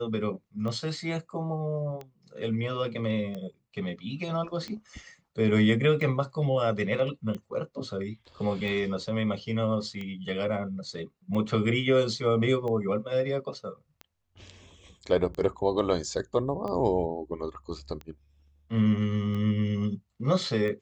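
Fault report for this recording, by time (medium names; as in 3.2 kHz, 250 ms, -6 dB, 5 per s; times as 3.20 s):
tick 45 rpm -25 dBFS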